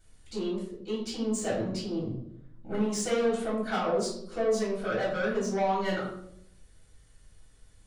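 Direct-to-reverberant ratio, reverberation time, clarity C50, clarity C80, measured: -8.0 dB, 0.75 s, 3.5 dB, 7.0 dB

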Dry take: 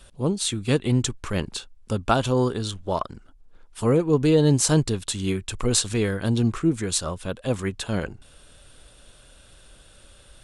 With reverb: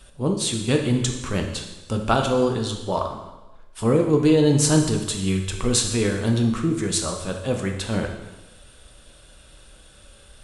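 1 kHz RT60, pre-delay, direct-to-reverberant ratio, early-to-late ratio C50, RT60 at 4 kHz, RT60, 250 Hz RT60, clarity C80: 1.1 s, 5 ms, 2.5 dB, 6.0 dB, 1.1 s, 1.1 s, 1.0 s, 8.5 dB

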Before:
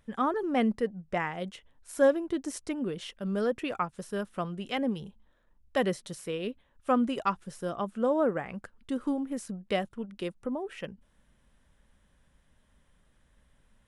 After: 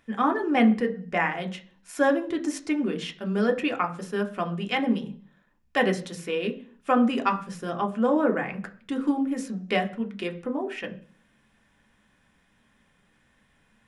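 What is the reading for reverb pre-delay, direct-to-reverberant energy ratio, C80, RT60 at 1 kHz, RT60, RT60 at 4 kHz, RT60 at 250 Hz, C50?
3 ms, 3.5 dB, 20.0 dB, 0.40 s, 0.45 s, 0.50 s, 0.60 s, 15.5 dB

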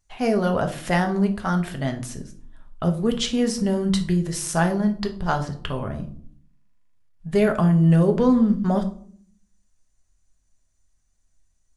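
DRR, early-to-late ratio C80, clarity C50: 4.5 dB, 17.5 dB, 13.0 dB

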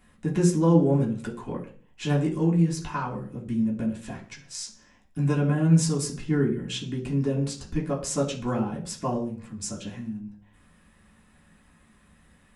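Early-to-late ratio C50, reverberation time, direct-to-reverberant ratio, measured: 11.0 dB, 0.40 s, -3.5 dB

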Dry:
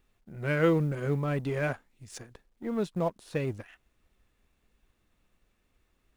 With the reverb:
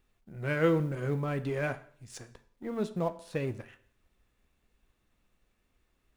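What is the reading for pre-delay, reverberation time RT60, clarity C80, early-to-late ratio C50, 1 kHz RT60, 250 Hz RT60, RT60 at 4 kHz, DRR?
9 ms, 0.55 s, 19.0 dB, 16.0 dB, 0.55 s, 0.55 s, 0.55 s, 11.0 dB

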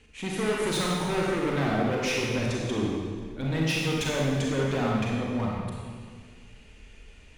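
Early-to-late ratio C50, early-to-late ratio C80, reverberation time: -2.0 dB, 0.5 dB, 1.8 s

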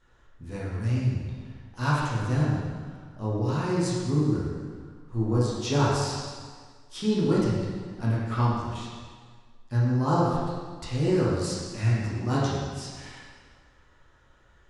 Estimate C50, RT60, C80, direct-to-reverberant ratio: -2.0 dB, 1.7 s, 0.5 dB, -7.5 dB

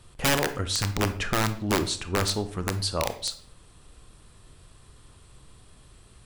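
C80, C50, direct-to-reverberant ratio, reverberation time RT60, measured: 16.5 dB, 12.5 dB, 9.5 dB, 0.55 s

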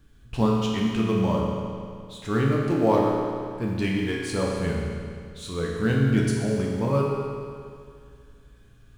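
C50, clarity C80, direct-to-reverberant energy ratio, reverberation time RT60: 0.0 dB, 1.5 dB, -3.0 dB, 2.2 s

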